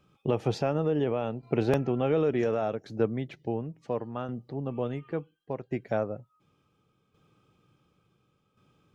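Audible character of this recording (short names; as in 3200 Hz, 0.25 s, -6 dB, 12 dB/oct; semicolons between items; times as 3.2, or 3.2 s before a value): tremolo saw down 0.7 Hz, depth 60%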